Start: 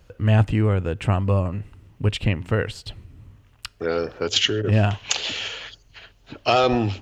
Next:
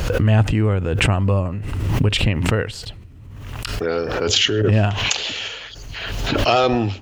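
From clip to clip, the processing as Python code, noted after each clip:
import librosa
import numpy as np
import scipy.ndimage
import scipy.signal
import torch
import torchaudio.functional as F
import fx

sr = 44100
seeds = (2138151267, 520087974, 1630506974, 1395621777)

y = fx.pre_swell(x, sr, db_per_s=30.0)
y = F.gain(torch.from_numpy(y), 1.5).numpy()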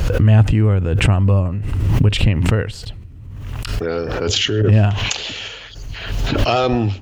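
y = fx.low_shelf(x, sr, hz=210.0, db=7.5)
y = F.gain(torch.from_numpy(y), -1.5).numpy()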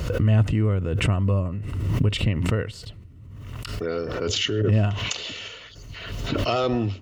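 y = fx.notch_comb(x, sr, f0_hz=820.0)
y = F.gain(torch.from_numpy(y), -5.5).numpy()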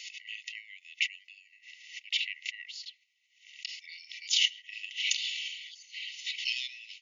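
y = fx.brickwall_bandpass(x, sr, low_hz=1900.0, high_hz=7100.0)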